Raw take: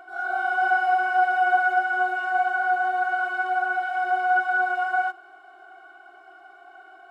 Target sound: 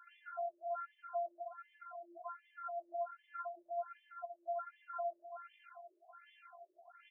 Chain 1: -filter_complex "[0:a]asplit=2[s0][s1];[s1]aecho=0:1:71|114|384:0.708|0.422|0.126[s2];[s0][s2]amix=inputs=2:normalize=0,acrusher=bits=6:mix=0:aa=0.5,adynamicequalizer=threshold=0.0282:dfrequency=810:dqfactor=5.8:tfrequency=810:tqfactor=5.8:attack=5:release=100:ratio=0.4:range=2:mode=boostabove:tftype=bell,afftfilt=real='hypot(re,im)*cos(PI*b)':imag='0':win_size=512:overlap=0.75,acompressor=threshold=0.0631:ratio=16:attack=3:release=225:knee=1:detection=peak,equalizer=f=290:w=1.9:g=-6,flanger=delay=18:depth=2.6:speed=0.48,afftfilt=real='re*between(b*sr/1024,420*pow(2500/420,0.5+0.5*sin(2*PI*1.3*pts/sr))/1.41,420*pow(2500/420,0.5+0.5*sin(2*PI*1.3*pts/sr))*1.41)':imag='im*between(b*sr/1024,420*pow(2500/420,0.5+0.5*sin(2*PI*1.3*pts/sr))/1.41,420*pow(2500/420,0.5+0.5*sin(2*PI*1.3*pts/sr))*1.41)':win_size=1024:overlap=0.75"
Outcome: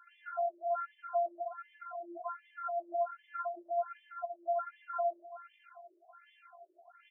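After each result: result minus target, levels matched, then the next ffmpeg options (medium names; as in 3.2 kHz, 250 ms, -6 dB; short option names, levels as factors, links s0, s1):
compression: peak gain reduction -5.5 dB; 250 Hz band +5.5 dB
-filter_complex "[0:a]asplit=2[s0][s1];[s1]aecho=0:1:71|114|384:0.708|0.422|0.126[s2];[s0][s2]amix=inputs=2:normalize=0,acrusher=bits=6:mix=0:aa=0.5,adynamicequalizer=threshold=0.0282:dfrequency=810:dqfactor=5.8:tfrequency=810:tqfactor=5.8:attack=5:release=100:ratio=0.4:range=2:mode=boostabove:tftype=bell,afftfilt=real='hypot(re,im)*cos(PI*b)':imag='0':win_size=512:overlap=0.75,acompressor=threshold=0.0316:ratio=16:attack=3:release=225:knee=1:detection=peak,equalizer=f=290:w=1.9:g=-6,flanger=delay=18:depth=2.6:speed=0.48,afftfilt=real='re*between(b*sr/1024,420*pow(2500/420,0.5+0.5*sin(2*PI*1.3*pts/sr))/1.41,420*pow(2500/420,0.5+0.5*sin(2*PI*1.3*pts/sr))*1.41)':imag='im*between(b*sr/1024,420*pow(2500/420,0.5+0.5*sin(2*PI*1.3*pts/sr))/1.41,420*pow(2500/420,0.5+0.5*sin(2*PI*1.3*pts/sr))*1.41)':win_size=1024:overlap=0.75"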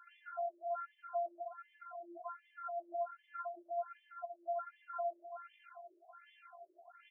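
250 Hz band +6.0 dB
-filter_complex "[0:a]asplit=2[s0][s1];[s1]aecho=0:1:71|114|384:0.708|0.422|0.126[s2];[s0][s2]amix=inputs=2:normalize=0,acrusher=bits=6:mix=0:aa=0.5,adynamicequalizer=threshold=0.0282:dfrequency=810:dqfactor=5.8:tfrequency=810:tqfactor=5.8:attack=5:release=100:ratio=0.4:range=2:mode=boostabove:tftype=bell,afftfilt=real='hypot(re,im)*cos(PI*b)':imag='0':win_size=512:overlap=0.75,acompressor=threshold=0.0316:ratio=16:attack=3:release=225:knee=1:detection=peak,equalizer=f=290:w=1.9:g=-17,flanger=delay=18:depth=2.6:speed=0.48,afftfilt=real='re*between(b*sr/1024,420*pow(2500/420,0.5+0.5*sin(2*PI*1.3*pts/sr))/1.41,420*pow(2500/420,0.5+0.5*sin(2*PI*1.3*pts/sr))*1.41)':imag='im*between(b*sr/1024,420*pow(2500/420,0.5+0.5*sin(2*PI*1.3*pts/sr))/1.41,420*pow(2500/420,0.5+0.5*sin(2*PI*1.3*pts/sr))*1.41)':win_size=1024:overlap=0.75"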